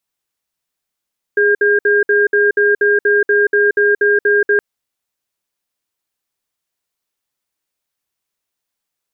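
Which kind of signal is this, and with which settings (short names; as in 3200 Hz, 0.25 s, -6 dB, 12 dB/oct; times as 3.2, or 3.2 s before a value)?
cadence 412 Hz, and 1610 Hz, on 0.18 s, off 0.06 s, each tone -12 dBFS 3.22 s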